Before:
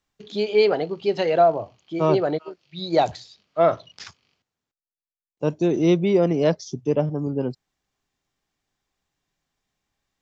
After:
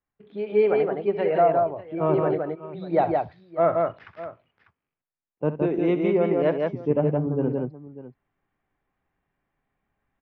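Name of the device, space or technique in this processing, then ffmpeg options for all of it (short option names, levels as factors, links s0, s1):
action camera in a waterproof case: -filter_complex "[0:a]asettb=1/sr,asplit=3[s0][s1][s2];[s0]atrim=end=5.624[s3];[s1]atrim=start=5.62:end=6.55,asetpts=PTS-STARTPTS,afade=t=in:d=0.004:c=qsin,afade=t=out:st=0.926:d=0.004:c=qsin,aemphasis=mode=production:type=bsi[s4];[s2]atrim=start=6.546[s5];[s3][s4]acrossfade=d=0.004:c1=hsin:c2=qsin[s6];[s6][s5]acrossfade=d=0.004:c1=qsin:c2=hsin,lowpass=f=2200:w=0.5412,lowpass=f=2200:w=1.3066,aecho=1:1:65|167|596:0.224|0.708|0.133,dynaudnorm=f=130:g=7:m=3.16,volume=0.398" -ar 48000 -c:a aac -b:a 96k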